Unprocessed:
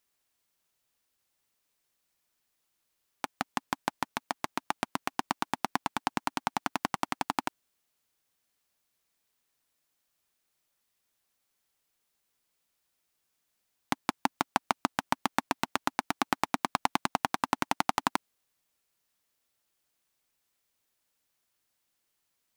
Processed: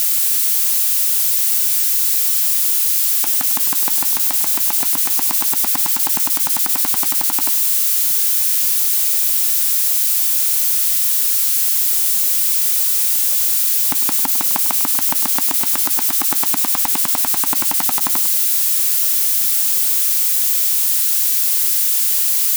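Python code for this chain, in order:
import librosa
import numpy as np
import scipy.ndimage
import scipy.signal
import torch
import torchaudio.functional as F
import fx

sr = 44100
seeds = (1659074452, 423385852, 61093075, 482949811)

p1 = x + 0.5 * 10.0 ** (-13.5 / 20.0) * np.diff(np.sign(x), prepend=np.sign(x[:1]))
p2 = fx.low_shelf(p1, sr, hz=390.0, db=3.0)
p3 = p2 + fx.echo_single(p2, sr, ms=101, db=-13.0, dry=0)
y = p3 * 10.0 ** (1.0 / 20.0)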